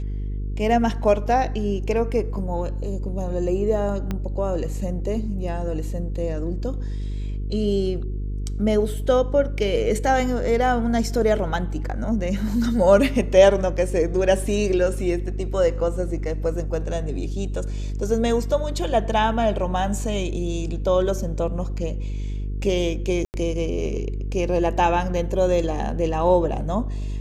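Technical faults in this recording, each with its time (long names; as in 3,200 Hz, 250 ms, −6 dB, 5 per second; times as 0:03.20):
mains buzz 50 Hz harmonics 9 −27 dBFS
0:04.11: click −14 dBFS
0:23.25–0:23.34: drop-out 89 ms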